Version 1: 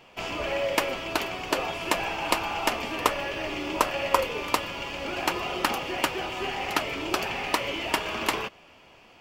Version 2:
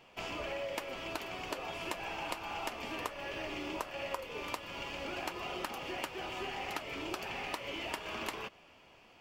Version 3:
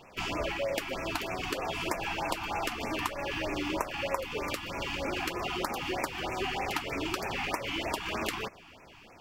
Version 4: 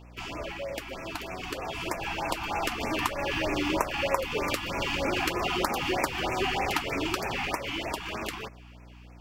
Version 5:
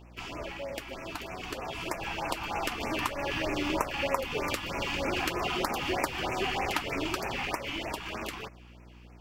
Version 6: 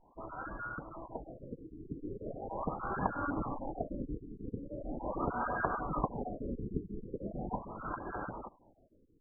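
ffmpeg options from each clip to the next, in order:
-af "acompressor=threshold=-29dB:ratio=6,volume=-6.5dB"
-filter_complex "[0:a]lowshelf=f=140:g=3.5,asplit=2[a][b];[b]asoftclip=type=hard:threshold=-34dB,volume=-8.5dB[c];[a][c]amix=inputs=2:normalize=0,afftfilt=real='re*(1-between(b*sr/1024,460*pow(3900/460,0.5+0.5*sin(2*PI*3.2*pts/sr))/1.41,460*pow(3900/460,0.5+0.5*sin(2*PI*3.2*pts/sr))*1.41))':imag='im*(1-between(b*sr/1024,460*pow(3900/460,0.5+0.5*sin(2*PI*3.2*pts/sr))/1.41,460*pow(3900/460,0.5+0.5*sin(2*PI*3.2*pts/sr))*1.41))':win_size=1024:overlap=0.75,volume=5dB"
-af "dynaudnorm=f=350:g=13:m=9.5dB,aeval=exprs='val(0)+0.00631*(sin(2*PI*60*n/s)+sin(2*PI*2*60*n/s)/2+sin(2*PI*3*60*n/s)/3+sin(2*PI*4*60*n/s)/4+sin(2*PI*5*60*n/s)/5)':c=same,volume=-4dB"
-af "tremolo=f=290:d=0.519"
-af "afftfilt=real='real(if(between(b,1,1012),(2*floor((b-1)/92)+1)*92-b,b),0)':imag='imag(if(between(b,1,1012),(2*floor((b-1)/92)+1)*92-b,b),0)*if(between(b,1,1012),-1,1)':win_size=2048:overlap=0.75,tiltshelf=f=1.1k:g=8.5,afftfilt=real='re*lt(b*sr/1024,460*pow(1700/460,0.5+0.5*sin(2*PI*0.4*pts/sr)))':imag='im*lt(b*sr/1024,460*pow(1700/460,0.5+0.5*sin(2*PI*0.4*pts/sr)))':win_size=1024:overlap=0.75,volume=-2dB"

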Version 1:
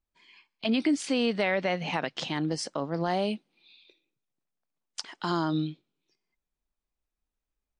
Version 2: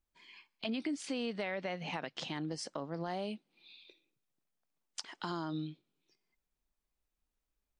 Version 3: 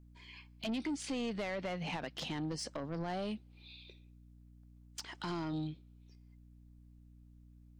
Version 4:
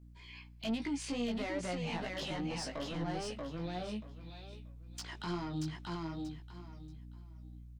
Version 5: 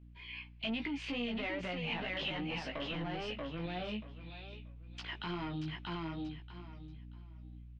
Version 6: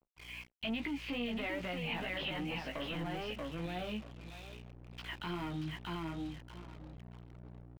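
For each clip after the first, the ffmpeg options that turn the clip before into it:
-af "acompressor=threshold=-43dB:ratio=2"
-af "lowshelf=f=120:g=8.5,asoftclip=type=tanh:threshold=-34dB,aeval=exprs='val(0)+0.00112*(sin(2*PI*60*n/s)+sin(2*PI*2*60*n/s)/2+sin(2*PI*3*60*n/s)/3+sin(2*PI*4*60*n/s)/4+sin(2*PI*5*60*n/s)/5)':c=same,volume=2dB"
-filter_complex "[0:a]aecho=1:1:633|1266|1899:0.631|0.139|0.0305,asplit=2[a][b];[b]alimiter=level_in=10.5dB:limit=-24dB:level=0:latency=1,volume=-10.5dB,volume=-1dB[c];[a][c]amix=inputs=2:normalize=0,flanger=delay=16.5:depth=2.2:speed=2.4,volume=-1.5dB"
-af "alimiter=level_in=8dB:limit=-24dB:level=0:latency=1:release=29,volume=-8dB,lowpass=f=2.8k:t=q:w=2.7"
-filter_complex "[0:a]aeval=exprs='val(0)*gte(abs(val(0)),0.00355)':c=same,acrossover=split=4100[a][b];[b]acompressor=threshold=-58dB:ratio=4:attack=1:release=60[c];[a][c]amix=inputs=2:normalize=0,anlmdn=0.000631"

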